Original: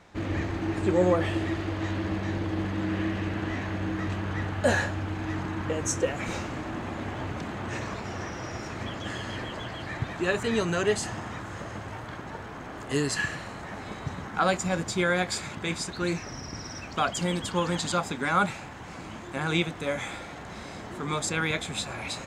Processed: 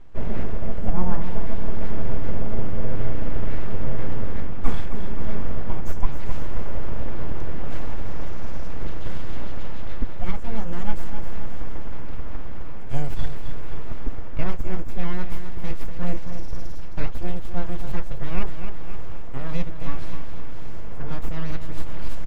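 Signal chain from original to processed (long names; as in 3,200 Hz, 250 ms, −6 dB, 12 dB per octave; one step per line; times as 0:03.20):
high-pass filter 110 Hz 12 dB per octave
high-shelf EQ 5,900 Hz +6 dB
notch filter 4,100 Hz, Q 6.2
full-wave rectification
repeating echo 263 ms, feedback 44%, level −10.5 dB
speech leveller within 3 dB 0.5 s
spectral tilt −4 dB per octave
level −4.5 dB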